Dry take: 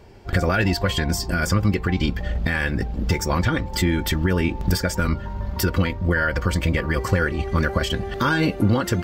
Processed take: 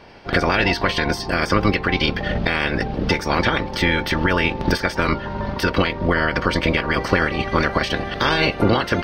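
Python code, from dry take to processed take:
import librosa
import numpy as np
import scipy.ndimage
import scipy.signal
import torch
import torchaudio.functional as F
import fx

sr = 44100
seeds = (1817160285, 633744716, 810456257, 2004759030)

y = fx.spec_clip(x, sr, under_db=18)
y = scipy.signal.savgol_filter(y, 15, 4, mode='constant')
y = F.gain(torch.from_numpy(y), 2.0).numpy()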